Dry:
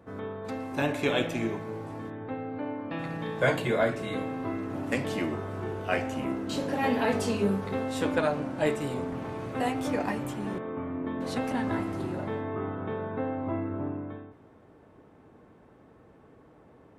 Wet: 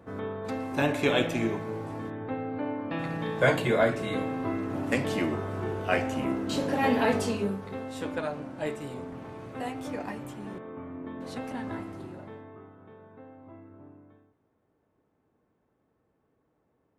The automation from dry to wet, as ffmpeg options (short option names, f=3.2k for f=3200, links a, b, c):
-af "volume=2dB,afade=t=out:st=7.07:d=0.5:silence=0.398107,afade=t=out:st=11.71:d=0.99:silence=0.266073"